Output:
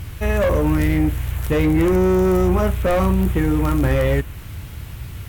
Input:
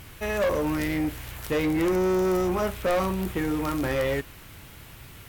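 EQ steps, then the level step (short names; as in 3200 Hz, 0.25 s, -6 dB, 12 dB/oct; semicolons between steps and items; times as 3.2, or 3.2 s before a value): bell 77 Hz +9.5 dB 1.9 oct; dynamic EQ 4800 Hz, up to -6 dB, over -54 dBFS, Q 1.7; low shelf 160 Hz +5.5 dB; +4.5 dB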